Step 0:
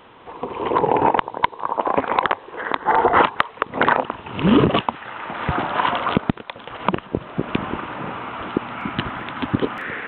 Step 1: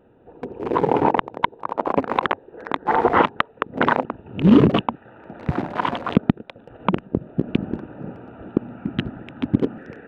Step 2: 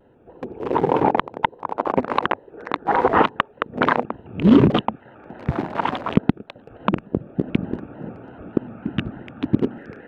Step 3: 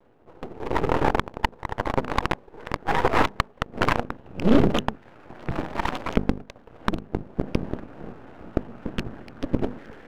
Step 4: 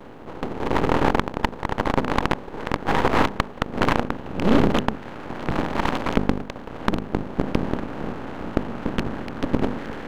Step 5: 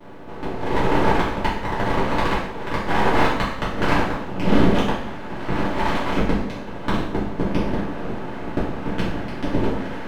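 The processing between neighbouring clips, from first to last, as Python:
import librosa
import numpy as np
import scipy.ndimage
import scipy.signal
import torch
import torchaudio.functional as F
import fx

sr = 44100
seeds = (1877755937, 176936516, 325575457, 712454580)

y1 = fx.wiener(x, sr, points=41)
y1 = fx.dynamic_eq(y1, sr, hz=210.0, q=0.74, threshold_db=-33.0, ratio=4.0, max_db=6)
y1 = y1 * 10.0 ** (-2.0 / 20.0)
y2 = fx.vibrato_shape(y1, sr, shape='square', rate_hz=3.4, depth_cents=100.0)
y3 = fx.hum_notches(y2, sr, base_hz=50, count=5)
y3 = np.maximum(y3, 0.0)
y4 = fx.bin_compress(y3, sr, power=0.6)
y4 = y4 * 10.0 ** (-2.0 / 20.0)
y5 = fx.rev_double_slope(y4, sr, seeds[0], early_s=0.66, late_s=2.1, knee_db=-18, drr_db=-9.5)
y5 = y5 * 10.0 ** (-8.0 / 20.0)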